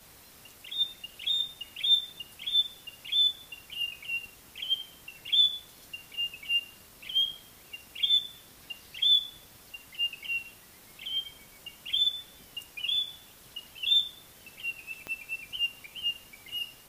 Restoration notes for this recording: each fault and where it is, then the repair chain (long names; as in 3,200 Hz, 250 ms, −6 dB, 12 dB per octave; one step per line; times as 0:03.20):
0:15.07: click −23 dBFS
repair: click removal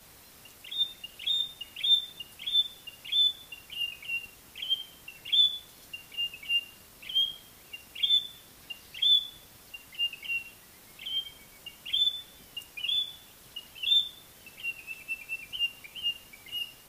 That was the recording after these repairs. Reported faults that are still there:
0:15.07: click